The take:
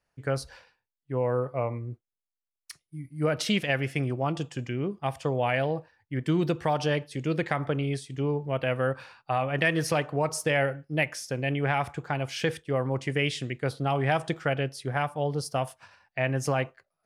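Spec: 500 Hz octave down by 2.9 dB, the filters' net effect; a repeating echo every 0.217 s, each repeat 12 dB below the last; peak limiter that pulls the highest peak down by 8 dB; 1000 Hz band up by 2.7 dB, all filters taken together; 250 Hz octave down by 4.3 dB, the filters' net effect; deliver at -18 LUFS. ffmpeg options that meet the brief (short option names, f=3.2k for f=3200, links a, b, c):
-af "equalizer=f=250:t=o:g=-6,equalizer=f=500:t=o:g=-4,equalizer=f=1k:t=o:g=6,alimiter=limit=-18dB:level=0:latency=1,aecho=1:1:217|434|651:0.251|0.0628|0.0157,volume=13dB"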